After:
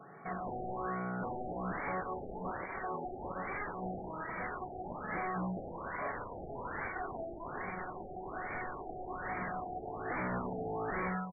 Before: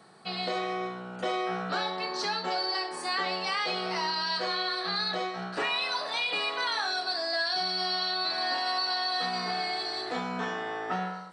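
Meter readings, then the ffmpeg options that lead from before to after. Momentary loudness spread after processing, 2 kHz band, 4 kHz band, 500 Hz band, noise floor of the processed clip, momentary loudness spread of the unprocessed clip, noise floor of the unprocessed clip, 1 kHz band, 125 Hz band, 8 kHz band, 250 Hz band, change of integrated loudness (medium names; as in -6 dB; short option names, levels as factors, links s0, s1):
6 LU, -9.5 dB, under -40 dB, -5.5 dB, -46 dBFS, 5 LU, -40 dBFS, -7.5 dB, +1.0 dB, under -35 dB, -2.0 dB, -10.0 dB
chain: -af "bandreject=f=930:w=8.6,asubboost=boost=4:cutoff=170,aecho=1:1:7.1:0.4,aresample=16000,aeval=exprs='0.0224*(abs(mod(val(0)/0.0224+3,4)-2)-1)':c=same,aresample=44100,afftfilt=real='re*lt(b*sr/1024,810*pow(2400/810,0.5+0.5*sin(2*PI*1.2*pts/sr)))':imag='im*lt(b*sr/1024,810*pow(2400/810,0.5+0.5*sin(2*PI*1.2*pts/sr)))':win_size=1024:overlap=0.75,volume=1.41"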